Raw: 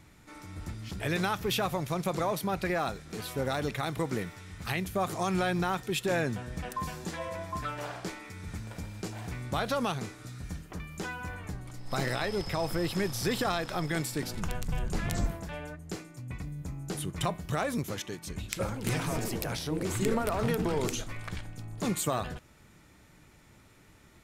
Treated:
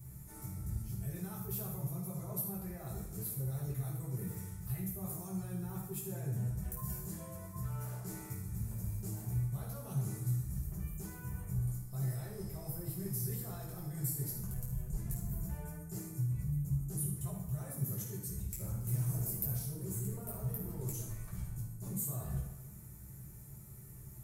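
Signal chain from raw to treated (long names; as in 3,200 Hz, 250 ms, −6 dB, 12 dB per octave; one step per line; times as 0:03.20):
reversed playback
downward compressor 6 to 1, threshold −42 dBFS, peak gain reduction 17 dB
reversed playback
drawn EQ curve 160 Hz 0 dB, 250 Hz −10 dB, 3,400 Hz −23 dB, 13,000 Hz +11 dB
convolution reverb RT60 1.0 s, pre-delay 4 ms, DRR −7.5 dB
level +1 dB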